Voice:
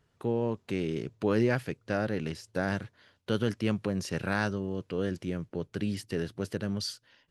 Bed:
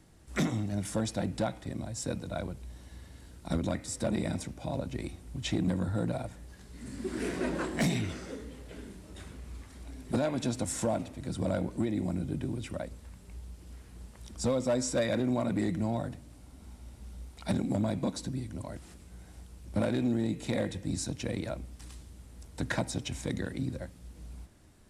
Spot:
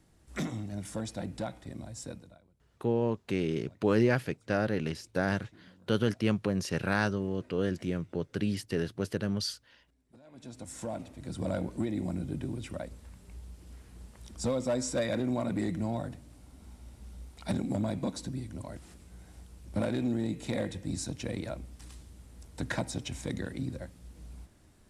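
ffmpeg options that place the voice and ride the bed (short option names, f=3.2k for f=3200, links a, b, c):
-filter_complex "[0:a]adelay=2600,volume=1dB[a];[1:a]volume=22dB,afade=t=out:st=1.97:d=0.42:silence=0.0668344,afade=t=in:st=10.24:d=1.31:silence=0.0446684[b];[a][b]amix=inputs=2:normalize=0"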